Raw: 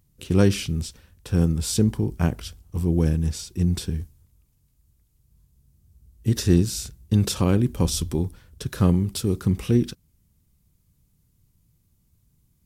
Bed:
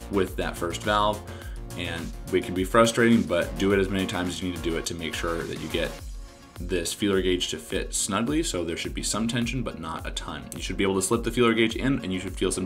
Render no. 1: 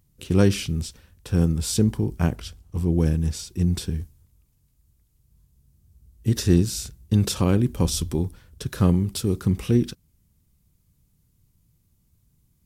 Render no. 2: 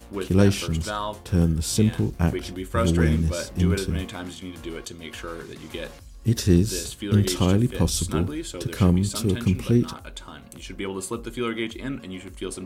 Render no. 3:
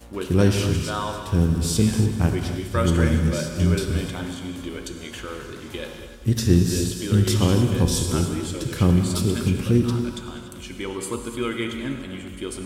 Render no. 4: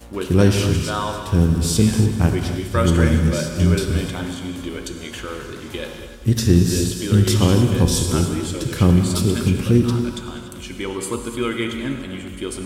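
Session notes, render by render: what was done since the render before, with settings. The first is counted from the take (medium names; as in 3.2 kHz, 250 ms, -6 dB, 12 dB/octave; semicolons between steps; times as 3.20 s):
2.36–2.99 s: treble shelf 10 kHz -6.5 dB
add bed -6.5 dB
multi-head delay 97 ms, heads all three, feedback 65%, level -21 dB; gated-style reverb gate 310 ms flat, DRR 5 dB
trim +3.5 dB; peak limiter -3 dBFS, peak gain reduction 2 dB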